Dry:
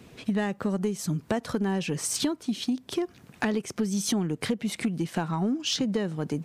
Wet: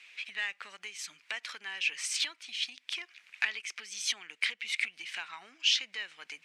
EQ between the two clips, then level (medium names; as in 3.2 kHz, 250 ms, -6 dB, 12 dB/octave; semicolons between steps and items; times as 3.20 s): resonant high-pass 2.3 kHz, resonance Q 3.3; distance through air 66 m; 0.0 dB